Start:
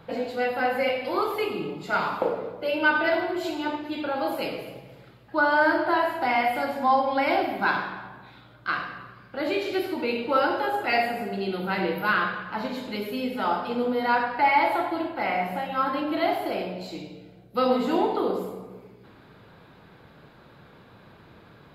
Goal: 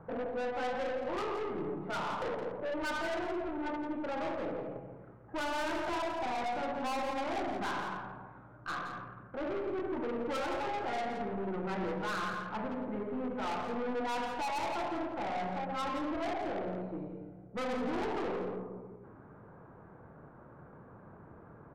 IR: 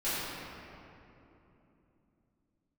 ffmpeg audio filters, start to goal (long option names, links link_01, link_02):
-filter_complex "[0:a]lowpass=frequency=1400:width=0.5412,lowpass=frequency=1400:width=1.3066,aeval=exprs='(tanh(39.8*val(0)+0.25)-tanh(0.25))/39.8':channel_layout=same,asplit=2[link_01][link_02];[link_02]aecho=0:1:169:0.355[link_03];[link_01][link_03]amix=inputs=2:normalize=0,volume=-1.5dB"